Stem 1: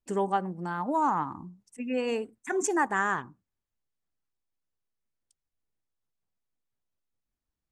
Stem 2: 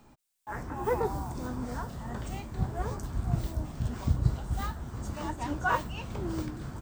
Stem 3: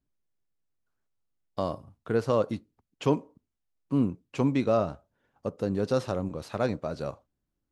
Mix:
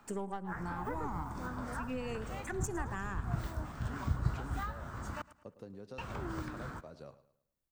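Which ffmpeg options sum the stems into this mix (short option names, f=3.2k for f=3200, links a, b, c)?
-filter_complex "[0:a]aeval=exprs='if(lt(val(0),0),0.708*val(0),val(0))':c=same,highshelf=f=10k:g=10.5,volume=-3.5dB,asplit=2[a][b];[b]volume=-19dB[c];[1:a]equalizer=f=1.4k:t=o:w=1.4:g=13,volume=-6.5dB,asplit=3[d][e][f];[d]atrim=end=5.22,asetpts=PTS-STARTPTS,afade=t=out:st=5.216:d=0.004:c=hsin[g];[e]atrim=start=5.22:end=5.98,asetpts=PTS-STARTPTS,volume=0[h];[f]atrim=start=5.98,asetpts=PTS-STARTPTS,afade=t=in:d=0.004:c=hsin[i];[g][h][i]concat=n=3:v=0:a=1,asplit=2[j][k];[k]volume=-19.5dB[l];[2:a]acompressor=threshold=-31dB:ratio=5,volume=-14dB,asplit=2[m][n];[n]volume=-15.5dB[o];[c][l][o]amix=inputs=3:normalize=0,aecho=0:1:108|216|324|432|540:1|0.36|0.13|0.0467|0.0168[p];[a][j][m][p]amix=inputs=4:normalize=0,acrossover=split=200[q][r];[r]acompressor=threshold=-38dB:ratio=6[s];[q][s]amix=inputs=2:normalize=0"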